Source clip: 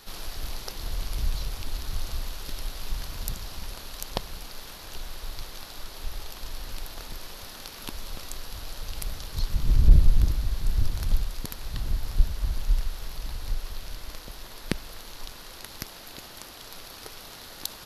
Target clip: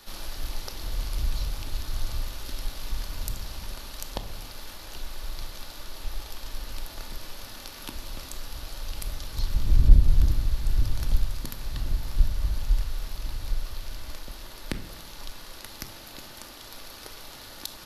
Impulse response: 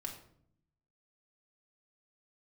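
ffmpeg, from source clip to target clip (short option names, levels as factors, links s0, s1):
-filter_complex "[0:a]acrossover=split=130[s0][s1];[s1]acompressor=threshold=0.0282:ratio=2[s2];[s0][s2]amix=inputs=2:normalize=0,asplit=2[s3][s4];[1:a]atrim=start_sample=2205[s5];[s4][s5]afir=irnorm=-1:irlink=0,volume=1.41[s6];[s3][s6]amix=inputs=2:normalize=0,volume=0.473"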